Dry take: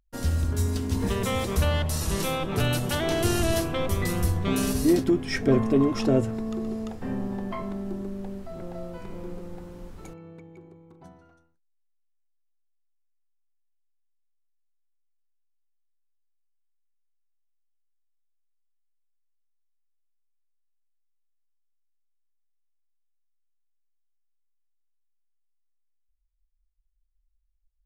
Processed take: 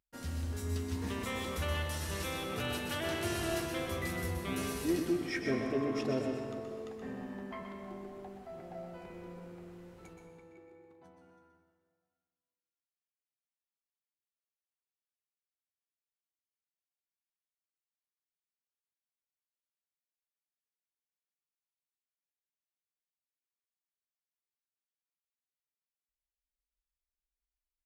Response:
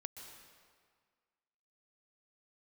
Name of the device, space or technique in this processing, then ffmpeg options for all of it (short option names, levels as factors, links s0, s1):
PA in a hall: -filter_complex "[0:a]asettb=1/sr,asplit=3[s0][s1][s2];[s0]atrim=end=7.824[s3];[s1]atrim=start=7.82:end=9.07,asetpts=PTS-STARTPTS,afade=t=in:d=0.004:c=qsin,afade=t=out:st=1.246:d=0.004:c=qsin,equalizer=f=740:t=o:w=0.21:g=13.5[s4];[s2]atrim=start=9.066[s5];[s3][s4]acrossfade=d=0.004:c1=hsin:c2=qsin[s6];[s6][s5]acrossfade=d=0.004:c1=qsin:c2=hsin,highpass=f=100:p=1,equalizer=f=2100:t=o:w=1.4:g=5.5,aecho=1:1:125:0.422[s7];[1:a]atrim=start_sample=2205[s8];[s7][s8]afir=irnorm=-1:irlink=0,asplit=2[s9][s10];[s10]adelay=12,volume=0.282[s11];[s9][s11]amix=inputs=2:normalize=0,volume=0.422"